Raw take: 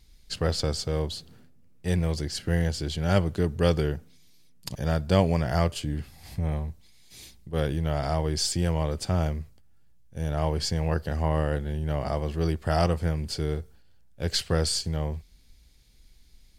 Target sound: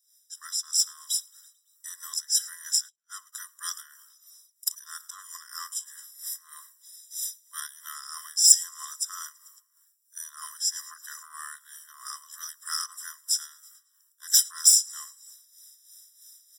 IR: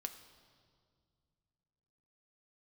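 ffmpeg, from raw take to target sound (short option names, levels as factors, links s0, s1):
-filter_complex "[0:a]highshelf=f=10000:g=-6,asplit=6[s0][s1][s2][s3][s4][s5];[s1]adelay=110,afreqshift=-67,volume=0.0841[s6];[s2]adelay=220,afreqshift=-134,volume=0.0531[s7];[s3]adelay=330,afreqshift=-201,volume=0.0335[s8];[s4]adelay=440,afreqshift=-268,volume=0.0211[s9];[s5]adelay=550,afreqshift=-335,volume=0.0132[s10];[s0][s6][s7][s8][s9][s10]amix=inputs=6:normalize=0,dynaudnorm=f=150:g=9:m=4.22,acrossover=split=550[s11][s12];[s11]aeval=exprs='val(0)*(1-0.7/2+0.7/2*cos(2*PI*3.1*n/s))':c=same[s13];[s12]aeval=exprs='val(0)*(1-0.7/2-0.7/2*cos(2*PI*3.1*n/s))':c=same[s14];[s13][s14]amix=inputs=2:normalize=0,asoftclip=type=tanh:threshold=0.251,asplit=3[s15][s16][s17];[s15]afade=t=out:st=2.88:d=0.02[s18];[s16]agate=range=0.00355:threshold=0.112:ratio=16:detection=peak,afade=t=in:st=2.88:d=0.02,afade=t=out:st=3.32:d=0.02[s19];[s17]afade=t=in:st=3.32:d=0.02[s20];[s18][s19][s20]amix=inputs=3:normalize=0,aexciter=amount=12.9:drive=7.1:freq=5000,afftfilt=real='re*eq(mod(floor(b*sr/1024/1000),2),1)':imag='im*eq(mod(floor(b*sr/1024/1000),2),1)':win_size=1024:overlap=0.75,volume=0.316"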